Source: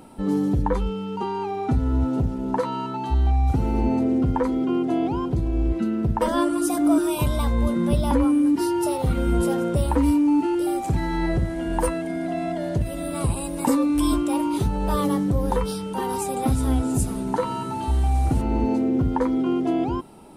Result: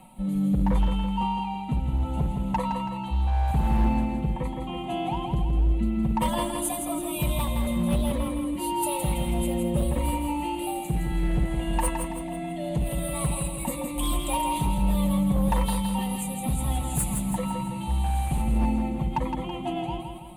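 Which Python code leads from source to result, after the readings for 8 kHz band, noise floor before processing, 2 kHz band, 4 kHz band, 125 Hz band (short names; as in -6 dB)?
+2.0 dB, -30 dBFS, -2.0 dB, +1.0 dB, -2.5 dB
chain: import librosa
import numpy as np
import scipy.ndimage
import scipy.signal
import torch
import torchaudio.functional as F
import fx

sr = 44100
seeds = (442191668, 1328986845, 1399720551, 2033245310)

p1 = fx.high_shelf(x, sr, hz=3600.0, db=6.5)
p2 = p1 + 0.73 * np.pad(p1, (int(5.4 * sr / 1000.0), 0))[:len(p1)]
p3 = fx.rotary_switch(p2, sr, hz=0.75, then_hz=8.0, switch_at_s=18.2)
p4 = fx.fixed_phaser(p3, sr, hz=1500.0, stages=6)
p5 = np.clip(10.0 ** (19.5 / 20.0) * p4, -1.0, 1.0) / 10.0 ** (19.5 / 20.0)
y = p5 + fx.echo_feedback(p5, sr, ms=164, feedback_pct=48, wet_db=-6.0, dry=0)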